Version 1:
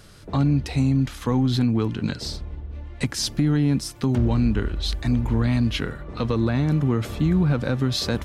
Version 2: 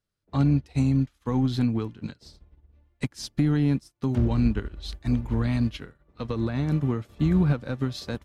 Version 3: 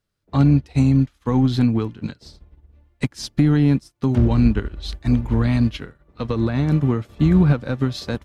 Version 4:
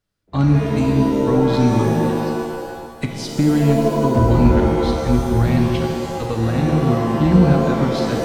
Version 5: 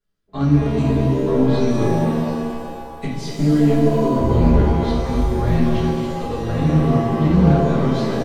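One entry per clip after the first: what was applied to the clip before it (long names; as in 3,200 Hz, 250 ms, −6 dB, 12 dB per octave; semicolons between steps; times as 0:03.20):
expander for the loud parts 2.5 to 1, over −42 dBFS
high-shelf EQ 6,800 Hz −4 dB; level +6.5 dB
reverb with rising layers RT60 2 s, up +7 semitones, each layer −2 dB, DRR 2 dB; level −1 dB
far-end echo of a speakerphone 250 ms, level −7 dB; rectangular room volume 40 cubic metres, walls mixed, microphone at 1.5 metres; highs frequency-modulated by the lows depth 0.12 ms; level −11.5 dB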